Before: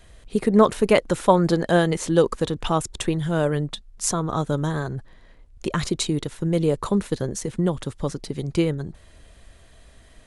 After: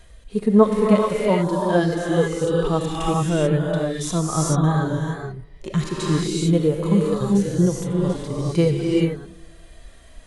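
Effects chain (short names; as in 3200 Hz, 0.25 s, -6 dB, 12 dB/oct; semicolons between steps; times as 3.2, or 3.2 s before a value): reverb removal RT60 0.89 s; non-linear reverb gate 0.46 s rising, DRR 2.5 dB; vocal rider within 4 dB 2 s; harmonic-percussive split percussive -17 dB; on a send: analogue delay 0.115 s, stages 1024, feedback 62%, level -23.5 dB; on the sum: gain +4 dB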